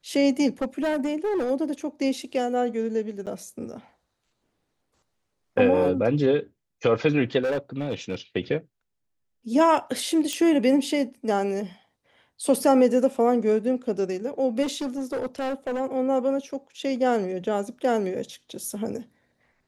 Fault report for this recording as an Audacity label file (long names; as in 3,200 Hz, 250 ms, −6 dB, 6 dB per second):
0.610000	1.510000	clipping −21.5 dBFS
3.260000	3.270000	drop-out 8.2 ms
7.410000	8.150000	clipping −22 dBFS
10.330000	10.330000	click −14 dBFS
14.620000	15.810000	clipping −24.5 dBFS